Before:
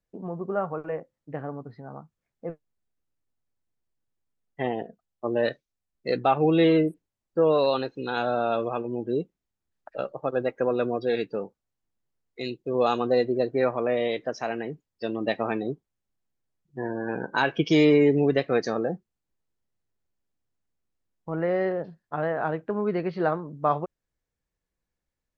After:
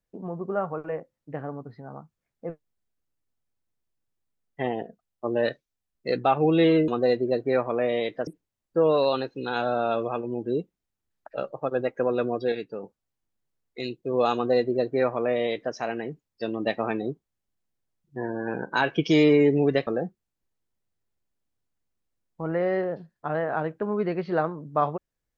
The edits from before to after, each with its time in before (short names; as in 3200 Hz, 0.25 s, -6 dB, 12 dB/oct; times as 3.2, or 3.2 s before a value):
11.13–11.44 gain -5 dB
12.96–14.35 copy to 6.88
18.48–18.75 cut